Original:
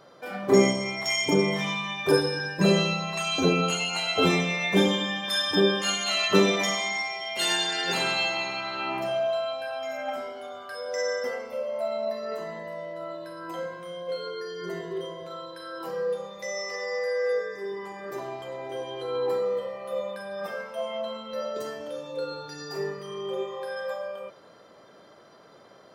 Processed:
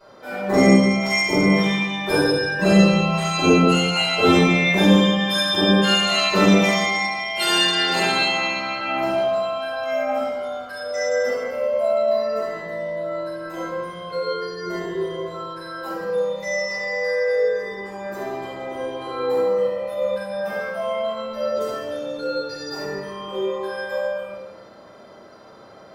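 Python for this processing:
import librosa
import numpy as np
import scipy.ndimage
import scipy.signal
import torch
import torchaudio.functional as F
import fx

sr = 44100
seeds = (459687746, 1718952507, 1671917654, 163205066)

p1 = x + fx.echo_multitap(x, sr, ms=(72, 164), db=(-9.0, -13.0), dry=0)
p2 = fx.room_shoebox(p1, sr, seeds[0], volume_m3=170.0, walls='mixed', distance_m=5.3)
y = p2 * 10.0 ** (-9.0 / 20.0)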